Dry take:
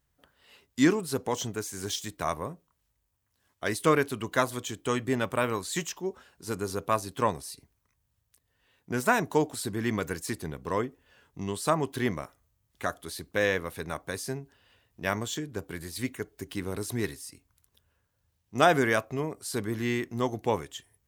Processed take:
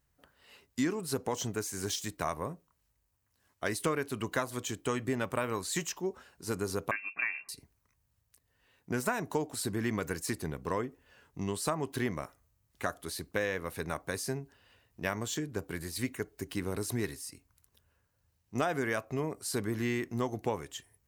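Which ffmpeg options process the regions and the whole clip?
-filter_complex "[0:a]asettb=1/sr,asplit=3[a][b][c];[a]atrim=end=6.914[d];[b]atrim=start=6.91:end=7.49,asetpts=PTS-STARTPTS,afade=t=in:d=0.004:c=qsin,afade=t=out:st=0.576:d=0.004:c=qsin,aecho=1:1:2.4:0.58,atrim=end_sample=25578,acompressor=threshold=-30dB:ratio=1.5:attack=3.2:release=140:knee=1:detection=peak,lowpass=f=2.4k:t=q:w=0.5098,lowpass=f=2.4k:t=q:w=0.6013,lowpass=f=2.4k:t=q:w=0.9,lowpass=f=2.4k:t=q:w=2.563,afreqshift=-2800[e];[c]atrim=start=7.486[f];[d][e]acrossfade=d=0.004:c1=hsin:c2=qsin[g];[g][f]acrossfade=d=0.004:c1=qsin:c2=hsin,acompressor=threshold=-28dB:ratio=5,equalizer=f=3.4k:w=6.1:g=-5"

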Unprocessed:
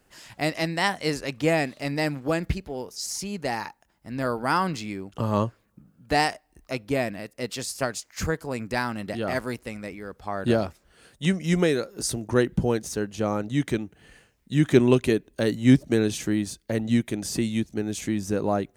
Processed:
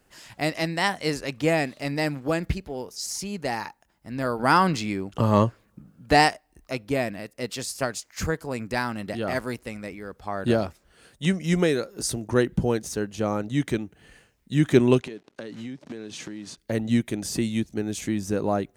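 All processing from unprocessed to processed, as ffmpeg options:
-filter_complex "[0:a]asettb=1/sr,asplit=3[a][b][c];[a]atrim=end=4.394[d];[b]atrim=start=4.39:end=6.29,asetpts=PTS-STARTPTS,afade=t=in:d=0.004:c=qsin,afade=t=out:st=1.896:d=0.004:c=qsin,acontrast=24,highshelf=f=11k:g=-4[e];[c]atrim=start=6.286[f];[d][e]acrossfade=d=0.004:c1=hsin:c2=qsin[g];[g][f]acrossfade=d=0.004:c1=qsin:c2=hsin,asettb=1/sr,asplit=3[h][i][j];[h]atrim=end=15.014[k];[i]atrim=start=15.01:end=16.58,asetpts=PTS-STARTPTS,afade=t=in:d=0.004:c=qsin,afade=t=out:st=1.566:d=0.004:c=qsin,acrusher=bits=8:dc=4:mix=0:aa=0.000001,highpass=160,lowpass=5.8k,acompressor=threshold=-32dB:ratio=20:attack=3.2:release=140:knee=1:detection=peak[l];[j]atrim=start=16.576[m];[k][l]acrossfade=d=0.004:c1=hsin:c2=qsin[n];[n][m]acrossfade=d=0.004:c1=qsin:c2=hsin"

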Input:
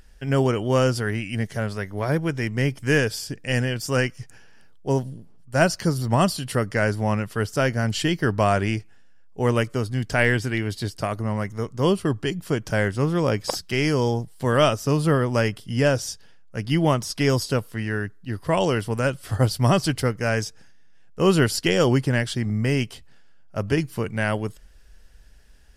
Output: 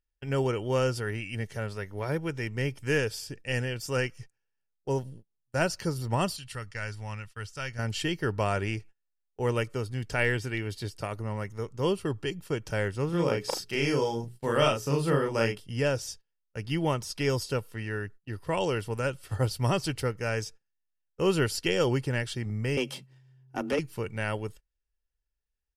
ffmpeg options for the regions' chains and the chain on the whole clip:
-filter_complex "[0:a]asettb=1/sr,asplit=3[a][b][c];[a]atrim=end=6.364[d];[b]atrim=start=6.36:end=7.79,asetpts=PTS-STARTPTS,afade=t=in:d=0.004:c=qsin,afade=t=out:st=1.426:d=0.004:c=qsin,lowpass=8.6k,equalizer=f=380:w=0.45:g=-15[e];[c]atrim=start=7.786[f];[d][e]acrossfade=d=0.004:c1=hsin:c2=qsin[g];[g][f]acrossfade=d=0.004:c1=qsin:c2=hsin,asettb=1/sr,asplit=3[h][i][j];[h]atrim=end=13.094[k];[i]atrim=start=13.09:end=15.6,asetpts=PTS-STARTPTS,afade=t=in:d=0.004:c=qsin,afade=t=out:st=2.506:d=0.004:c=qsin,lowshelf=f=120:t=q:w=1.5:g=-6,bandreject=f=60:t=h:w=6,bandreject=f=120:t=h:w=6,bandreject=f=180:t=h:w=6,bandreject=f=240:t=h:w=6,bandreject=f=300:t=h:w=6,bandreject=f=360:t=h:w=6,bandreject=f=420:t=h:w=6,asplit=2[l][m];[m]adelay=35,volume=-2.5dB[n];[l][n]amix=inputs=2:normalize=0,atrim=end_sample=110691[o];[j]atrim=start=15.596[p];[k][o]acrossfade=d=0.004:c1=hsin:c2=qsin[q];[q][p]acrossfade=d=0.004:c1=qsin:c2=hsin,asettb=1/sr,asplit=3[r][s][t];[r]atrim=end=22.774[u];[s]atrim=start=22.77:end=23.79,asetpts=PTS-STARTPTS,afade=t=in:d=0.004:c=qsin,afade=t=out:st=1.016:d=0.004:c=qsin,acompressor=threshold=-30dB:ratio=1.5:attack=3.2:release=140:knee=1:detection=peak,afreqshift=130,aeval=exprs='0.2*sin(PI/2*1.58*val(0)/0.2)':c=same[v];[t]atrim=start=23.786[w];[u][v]acrossfade=d=0.004:c1=hsin:c2=qsin[x];[x][w]acrossfade=d=0.004:c1=qsin:c2=hsin,agate=range=-29dB:threshold=-37dB:ratio=16:detection=peak,equalizer=f=2.6k:w=4.5:g=4,aecho=1:1:2.2:0.33,volume=-7.5dB"

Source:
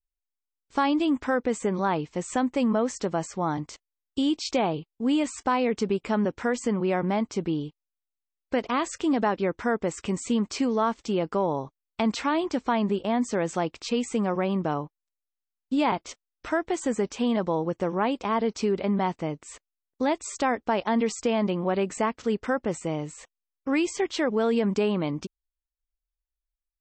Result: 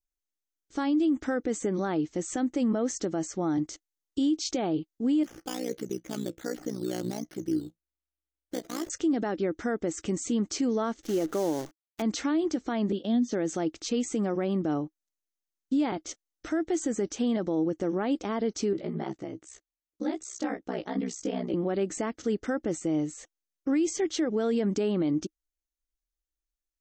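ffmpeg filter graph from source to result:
-filter_complex "[0:a]asettb=1/sr,asplit=3[a][b][c];[a]atrim=end=5.234[d];[b]atrim=start=5.23:end=8.9,asetpts=PTS-STARTPTS,afade=t=in:d=0.004:c=qsin,afade=t=out:st=3.666:d=0.004:c=qsin,acrusher=samples=9:mix=1:aa=0.000001:lfo=1:lforange=5.4:lforate=1.3,flanger=delay=5.5:depth=1:regen=71:speed=1.1:shape=triangular,tremolo=f=60:d=0.857[e];[c]atrim=start=8.896[f];[d][e]acrossfade=d=0.004:c1=hsin:c2=qsin[g];[g][f]acrossfade=d=0.004:c1=qsin:c2=hsin,asettb=1/sr,asplit=3[h][i][j];[h]atrim=end=11.034[k];[i]atrim=start=11.03:end=12.02,asetpts=PTS-STARTPTS,afade=t=in:d=0.004:c=qsin,afade=t=out:st=0.986:d=0.004:c=qsin,aeval=exprs='val(0)+0.5*0.01*sgn(val(0))':c=same,bass=f=250:g=-6,treble=f=4k:g=-13,acrusher=bits=7:dc=4:mix=0:aa=0.000001[l];[j]atrim=start=12.016[m];[k][l]acrossfade=d=0.004:c1=hsin:c2=qsin[n];[n][m]acrossfade=d=0.004:c1=qsin:c2=hsin,asettb=1/sr,asplit=3[o][p][q];[o]atrim=end=12.924[r];[p]atrim=start=12.92:end=13.32,asetpts=PTS-STARTPTS,afade=t=in:d=0.004:c=qsin,afade=t=out:st=0.396:d=0.004:c=qsin,highpass=180,equalizer=f=240:t=q:w=4:g=8,equalizer=f=340:t=q:w=4:g=-10,equalizer=f=870:t=q:w=4:g=-4,equalizer=f=1.3k:t=q:w=4:g=-8,equalizer=f=2.2k:t=q:w=4:g=-9,equalizer=f=3.5k:t=q:w=4:g=8,lowpass=f=5.4k:w=0.5412,lowpass=f=5.4k:w=1.3066,acrossover=split=480|3000[s][t][u];[t]acompressor=threshold=-37dB:ratio=3:attack=3.2:release=140:knee=2.83:detection=peak[v];[s][v][u]amix=inputs=3:normalize=0[w];[q]atrim=start=13.316[x];[r][w]acrossfade=d=0.004:c1=hsin:c2=qsin[y];[y][x]acrossfade=d=0.004:c1=qsin:c2=hsin,asettb=1/sr,asplit=3[z][aa][ab];[z]atrim=end=18.734[ac];[aa]atrim=start=18.73:end=21.54,asetpts=PTS-STARTPTS,afade=t=in:d=0.004:c=qsin,afade=t=out:st=2.806:d=0.004:c=qsin,aeval=exprs='val(0)*sin(2*PI*32*n/s)':c=same,flanger=delay=15:depth=4.7:speed=2.6[ad];[ab]atrim=start=21.536[ae];[ac][ad]acrossfade=d=0.004:c1=hsin:c2=qsin[af];[af][ae]acrossfade=d=0.004:c1=qsin:c2=hsin,equalizer=f=315:t=o:w=0.33:g=12,equalizer=f=1k:t=o:w=0.33:g=-12,equalizer=f=2.5k:t=o:w=0.33:g=-6,equalizer=f=6.3k:t=o:w=0.33:g=8,alimiter=limit=-17dB:level=0:latency=1:release=73,volume=-2.5dB"

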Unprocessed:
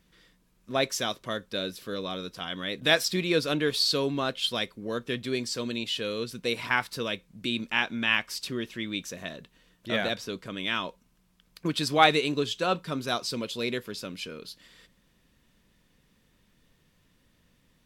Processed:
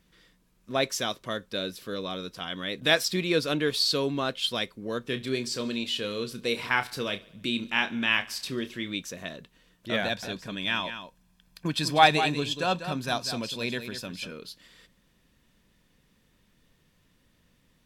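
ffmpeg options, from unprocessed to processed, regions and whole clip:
-filter_complex "[0:a]asettb=1/sr,asplit=3[a][b][c];[a]atrim=end=5.014[d];[b]atrim=start=5.01:end=8.94,asetpts=PTS-STARTPTS,afade=t=in:d=0.004:c=qsin,afade=t=out:st=3.926:d=0.004:c=qsin,asplit=2[e][f];[f]adelay=30,volume=-10dB[g];[e][g]amix=inputs=2:normalize=0,atrim=end_sample=173313,aecho=1:1:72|144|216|288|360:0.0841|0.0496|0.0293|0.0173|0.0102,atrim=end_sample=173313[h];[c]atrim=start=8.936[i];[d][h]acrossfade=d=0.004:c1=hsin:c2=qsin[j];[j][i]acrossfade=d=0.004:c1=qsin:c2=hsin,asettb=1/sr,asplit=3[k][l][m];[k]atrim=end=10.034[n];[l]atrim=start=10.03:end=14.32,asetpts=PTS-STARTPTS,afade=t=in:d=0.004:c=qsin,afade=t=out:st=4.286:d=0.004:c=qsin,aecho=1:1:1.2:0.41,atrim=end_sample=189189,aecho=1:1:195:0.316,atrim=end_sample=189189[o];[m]atrim=start=14.316[p];[n][o]acrossfade=d=0.004:c1=hsin:c2=qsin[q];[q][p]acrossfade=d=0.004:c1=qsin:c2=hsin"

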